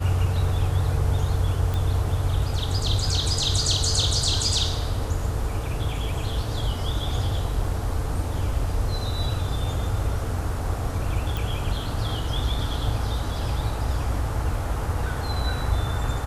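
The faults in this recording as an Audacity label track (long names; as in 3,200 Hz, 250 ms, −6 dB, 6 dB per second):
1.740000	1.740000	click
7.640000	7.640000	drop-out 2.5 ms
11.370000	11.370000	click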